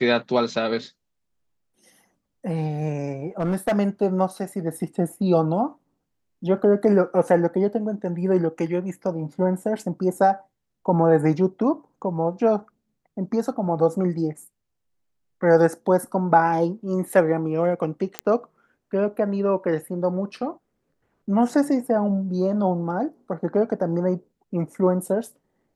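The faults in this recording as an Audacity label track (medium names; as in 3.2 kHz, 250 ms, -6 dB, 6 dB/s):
3.400000	3.720000	clipped -17.5 dBFS
18.190000	18.190000	pop -8 dBFS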